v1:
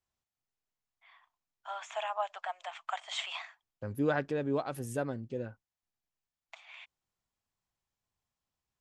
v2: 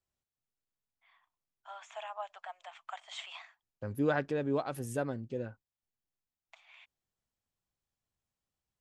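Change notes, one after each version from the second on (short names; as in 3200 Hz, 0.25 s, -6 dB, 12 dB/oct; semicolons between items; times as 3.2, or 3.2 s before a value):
first voice -7.0 dB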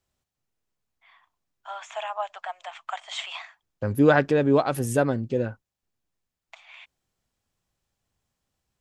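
first voice +10.5 dB; second voice +12.0 dB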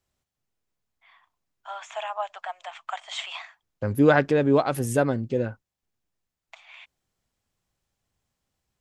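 second voice: remove notch 2100 Hz, Q 30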